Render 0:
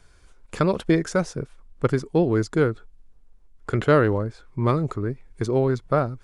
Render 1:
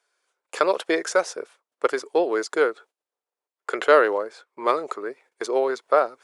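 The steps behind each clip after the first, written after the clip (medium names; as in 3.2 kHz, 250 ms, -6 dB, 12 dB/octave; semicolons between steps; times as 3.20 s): gate -42 dBFS, range -16 dB; high-pass 450 Hz 24 dB/octave; trim +4.5 dB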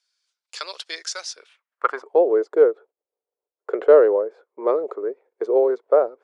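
band-pass sweep 4.7 kHz -> 460 Hz, 1.30–2.27 s; trim +7 dB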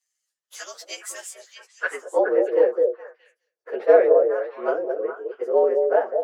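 frequency axis rescaled in octaves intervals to 112%; repeats whose band climbs or falls 210 ms, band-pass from 460 Hz, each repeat 1.4 oct, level -2.5 dB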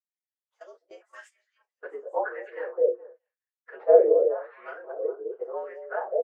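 doubling 34 ms -11.5 dB; wah-wah 0.91 Hz 370–2100 Hz, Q 2.8; gate -50 dBFS, range -17 dB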